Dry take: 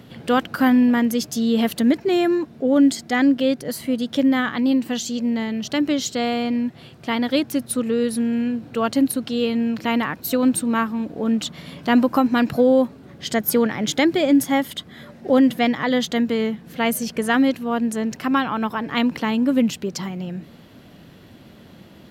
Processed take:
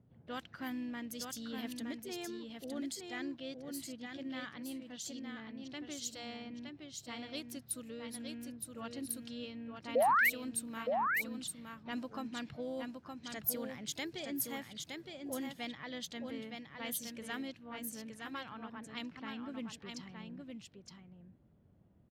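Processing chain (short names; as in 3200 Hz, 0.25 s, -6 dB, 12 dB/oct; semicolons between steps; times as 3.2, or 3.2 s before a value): pre-emphasis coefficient 0.9; low-pass opened by the level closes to 690 Hz, open at -28 dBFS; EQ curve 100 Hz 0 dB, 260 Hz -10 dB, 4200 Hz -14 dB, 9900 Hz -17 dB; painted sound rise, 9.95–10.3, 460–2400 Hz -31 dBFS; harmoniser +4 st -16 dB; echo 0.916 s -5 dB; gain +3.5 dB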